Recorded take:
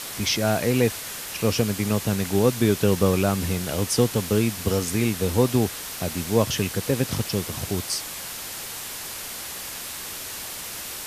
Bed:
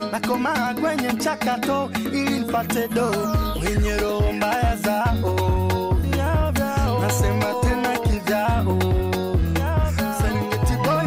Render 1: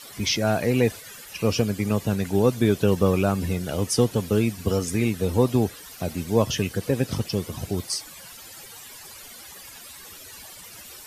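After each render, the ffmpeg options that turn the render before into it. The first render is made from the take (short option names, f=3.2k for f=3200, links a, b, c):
-af "afftdn=nr=14:nf=-35"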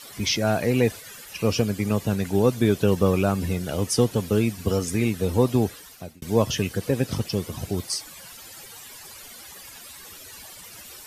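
-filter_complex "[0:a]asplit=2[a][b];[a]atrim=end=6.22,asetpts=PTS-STARTPTS,afade=t=out:st=5.72:d=0.5[c];[b]atrim=start=6.22,asetpts=PTS-STARTPTS,afade=t=in:d=0.004:c=hsin[d];[c][d]concat=n=2:v=0:a=1"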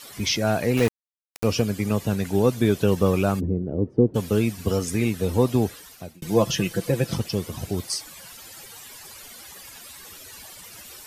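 -filter_complex "[0:a]asettb=1/sr,asplit=3[a][b][c];[a]atrim=end=0.774[d];[b]atrim=start=0.77:end=1.44,asetpts=PTS-STARTPTS,afade=t=in:d=0.004:c=qsin,afade=t=out:st=0.666:d=0.004:c=qsin,aeval=exprs='val(0)*gte(abs(val(0)),0.0631)':c=same[e];[c]atrim=start=1.436[f];[d][e]acrossfade=d=0.004:c1=hsin:c2=qsin[g];[g][f]acrossfade=d=0.004:c1=qsin:c2=hsin,asplit=3[h][i][j];[h]afade=t=out:st=3.39:d=0.02[k];[i]lowpass=f=370:t=q:w=1.8,afade=t=in:st=3.39:d=0.02,afade=t=out:st=4.14:d=0.02[l];[j]afade=t=in:st=4.14:d=0.02[m];[k][l][m]amix=inputs=3:normalize=0,asettb=1/sr,asplit=3[n][o][p];[n]atrim=end=6.144[q];[o]atrim=start=6.14:end=7.17,asetpts=PTS-STARTPTS,afade=t=in:d=0.004:c=qsin,afade=t=out:st=1.026:d=0.004:c=qsin,aecho=1:1:5.9:0.65,atrim=end_sample=45423[r];[p]atrim=start=7.166[s];[q][r]acrossfade=d=0.004:c1=hsin:c2=qsin[t];[t][s]acrossfade=d=0.004:c1=qsin:c2=hsin"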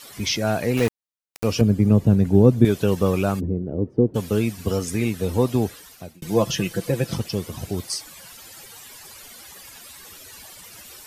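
-filter_complex "[0:a]asettb=1/sr,asplit=3[a][b][c];[a]atrim=end=1.614[d];[b]atrim=start=1.61:end=2.65,asetpts=PTS-STARTPTS,afade=t=in:d=0.004:c=qsin,afade=t=out:st=1.036:d=0.004:c=qsin,tiltshelf=f=680:g=10[e];[c]atrim=start=2.646[f];[d][e]acrossfade=d=0.004:c1=hsin:c2=qsin[g];[g][f]acrossfade=d=0.004:c1=qsin:c2=hsin"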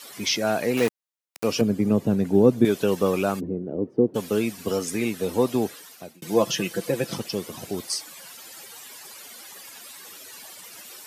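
-af "highpass=220"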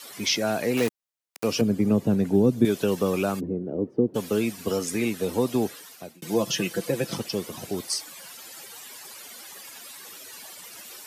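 -filter_complex "[0:a]acrossover=split=300|3000[a][b][c];[b]acompressor=threshold=-23dB:ratio=6[d];[a][d][c]amix=inputs=3:normalize=0"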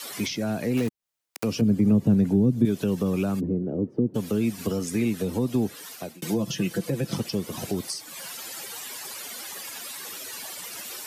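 -filter_complex "[0:a]asplit=2[a][b];[b]alimiter=limit=-15.5dB:level=0:latency=1:release=69,volume=-0.5dB[c];[a][c]amix=inputs=2:normalize=0,acrossover=split=260[d][e];[e]acompressor=threshold=-31dB:ratio=6[f];[d][f]amix=inputs=2:normalize=0"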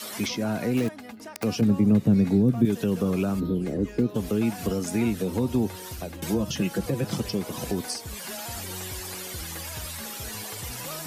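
-filter_complex "[1:a]volume=-19.5dB[a];[0:a][a]amix=inputs=2:normalize=0"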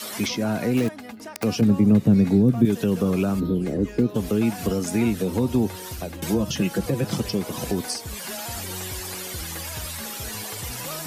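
-af "volume=3dB"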